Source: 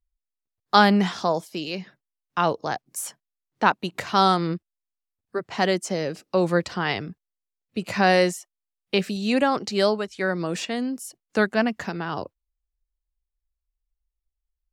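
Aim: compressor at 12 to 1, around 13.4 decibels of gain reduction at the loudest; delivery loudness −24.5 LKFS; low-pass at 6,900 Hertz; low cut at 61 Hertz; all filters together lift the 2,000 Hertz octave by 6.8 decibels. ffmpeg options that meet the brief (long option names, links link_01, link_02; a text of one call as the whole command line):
ffmpeg -i in.wav -af "highpass=61,lowpass=6900,equalizer=frequency=2000:width_type=o:gain=9,acompressor=threshold=-21dB:ratio=12,volume=3.5dB" out.wav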